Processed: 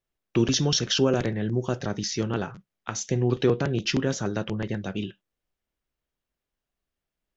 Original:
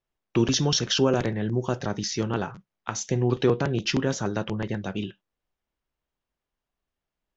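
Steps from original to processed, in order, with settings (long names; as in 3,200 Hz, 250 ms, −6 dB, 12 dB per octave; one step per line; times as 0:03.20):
parametric band 940 Hz −4.5 dB 0.69 octaves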